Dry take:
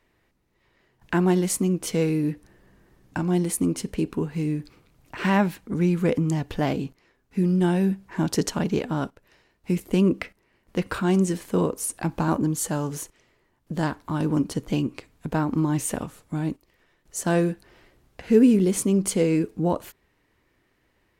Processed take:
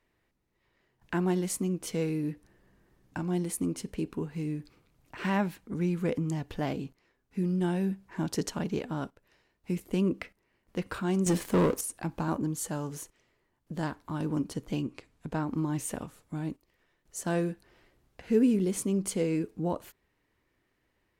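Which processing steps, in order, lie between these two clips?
0:11.26–0:11.81: leveller curve on the samples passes 3
0:14.81–0:15.46: low-pass filter 11,000 Hz 12 dB per octave
level −7.5 dB

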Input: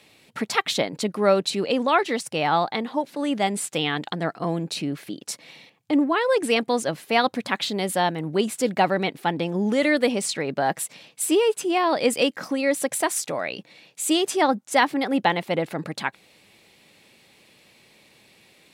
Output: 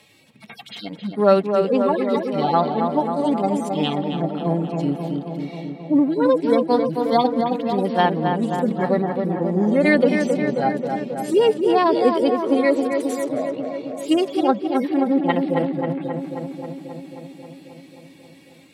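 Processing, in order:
harmonic-percussive split with one part muted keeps harmonic
feedback echo with a low-pass in the loop 268 ms, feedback 75%, low-pass 2,400 Hz, level −5 dB
level +4 dB

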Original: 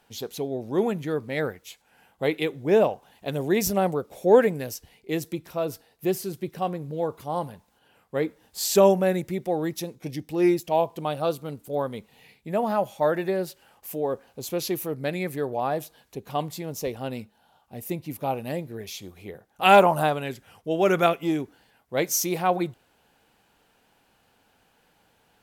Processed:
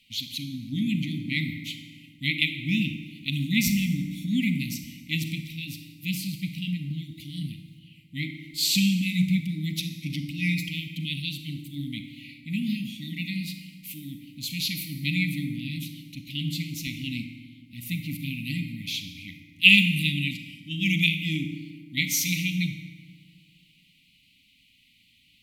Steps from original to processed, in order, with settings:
linear-phase brick-wall band-stop 300–1,900 Hz
flat-topped bell 3,100 Hz +11 dB 1.2 octaves
on a send at −6 dB: convolution reverb RT60 2.0 s, pre-delay 35 ms
on the sum: dynamic equaliser 170 Hz, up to +6 dB, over −38 dBFS, Q 0.96
level −1.5 dB

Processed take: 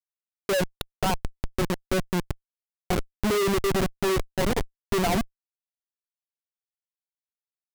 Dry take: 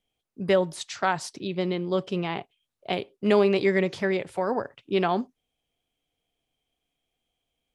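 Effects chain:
expanding power law on the bin magnitudes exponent 1.7
reverb reduction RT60 0.53 s
comparator with hysteresis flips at −25.5 dBFS
level +6.5 dB

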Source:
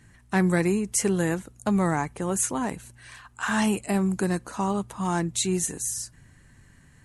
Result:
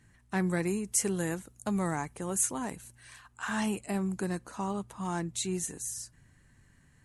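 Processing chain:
0:00.67–0:03.28: high-shelf EQ 6,500 Hz +8 dB
level −7.5 dB

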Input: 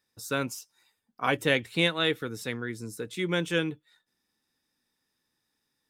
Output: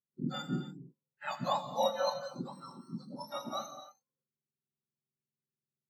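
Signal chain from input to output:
frequency axis turned over on the octave scale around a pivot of 1,400 Hz
low-pass filter 3,400 Hz 6 dB per octave
in parallel at −7.5 dB: dead-zone distortion −49 dBFS
on the sum: reverb whose tail is shaped and stops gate 320 ms flat, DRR 3.5 dB
every bin expanded away from the loudest bin 1.5 to 1
level −7 dB

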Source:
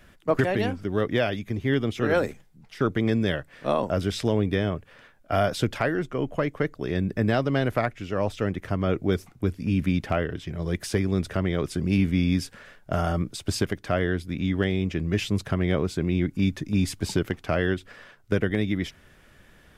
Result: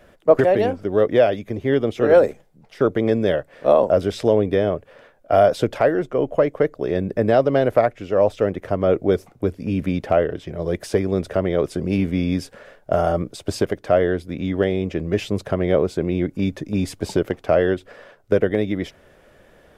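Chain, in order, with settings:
parametric band 550 Hz +13.5 dB 1.4 octaves
level −1.5 dB

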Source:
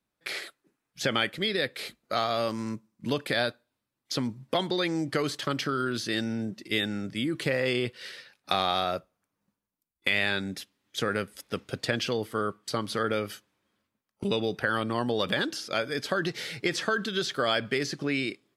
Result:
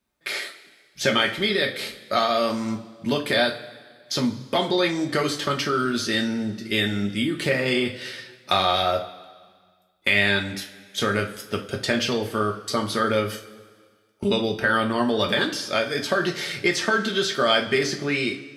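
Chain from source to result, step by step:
coupled-rooms reverb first 0.28 s, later 1.7 s, from −18 dB, DRR 0.5 dB
level +3.5 dB

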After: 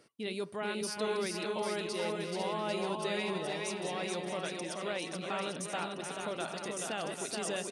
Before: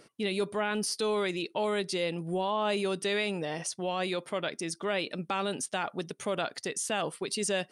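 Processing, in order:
delay that plays each chunk backwards 270 ms, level −7 dB
high-pass filter 46 Hz
on a send: bouncing-ball delay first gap 430 ms, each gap 0.85×, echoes 5
on the sum: level −7 dB

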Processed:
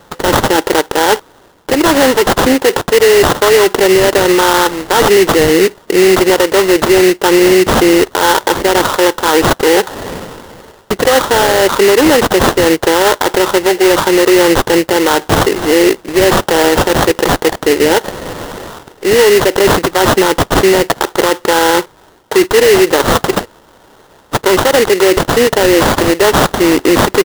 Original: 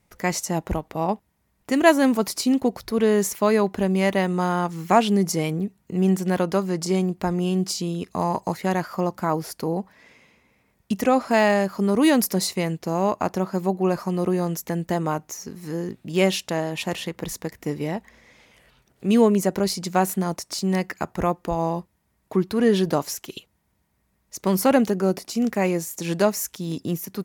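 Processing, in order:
high-pass filter 290 Hz 24 dB per octave
comb filter 2.2 ms, depth 71%
reversed playback
downward compressor 6 to 1, threshold −31 dBFS, peak gain reduction 19 dB
reversed playback
sample-rate reduction 2,400 Hz, jitter 20%
boost into a limiter +30 dB
level −1 dB

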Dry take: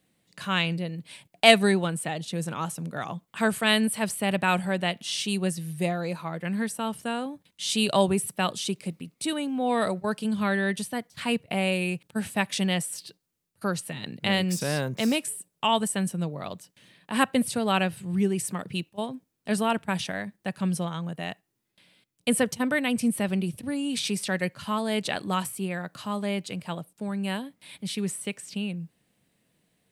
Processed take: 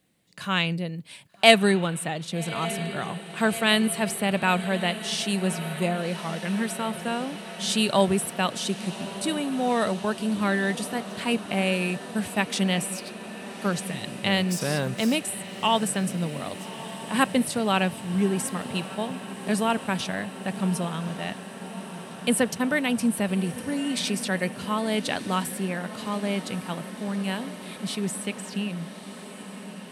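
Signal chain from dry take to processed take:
feedback delay with all-pass diffusion 1,201 ms, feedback 77%, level −14 dB
level +1 dB

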